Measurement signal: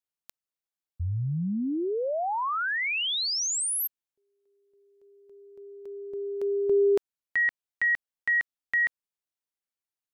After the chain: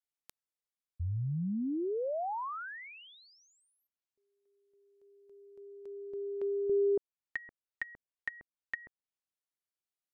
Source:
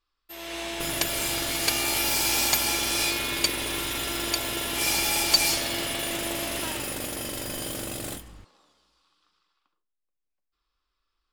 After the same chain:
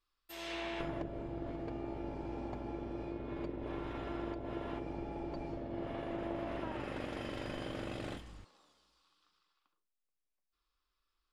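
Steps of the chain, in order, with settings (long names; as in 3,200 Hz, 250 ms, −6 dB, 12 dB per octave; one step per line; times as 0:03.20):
treble cut that deepens with the level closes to 500 Hz, closed at −24.5 dBFS
level −5 dB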